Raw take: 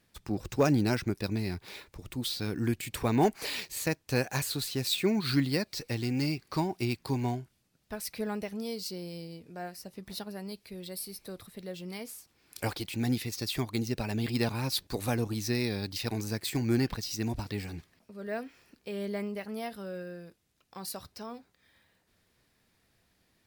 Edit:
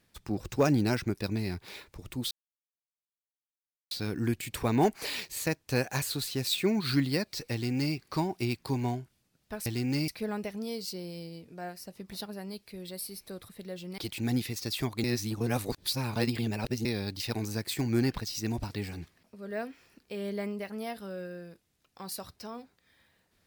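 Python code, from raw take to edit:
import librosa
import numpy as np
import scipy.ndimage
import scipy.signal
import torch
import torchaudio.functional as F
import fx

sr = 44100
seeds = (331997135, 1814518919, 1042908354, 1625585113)

y = fx.edit(x, sr, fx.insert_silence(at_s=2.31, length_s=1.6),
    fx.duplicate(start_s=5.93, length_s=0.42, to_s=8.06),
    fx.cut(start_s=11.96, length_s=0.78),
    fx.reverse_span(start_s=13.8, length_s=1.81), tone=tone)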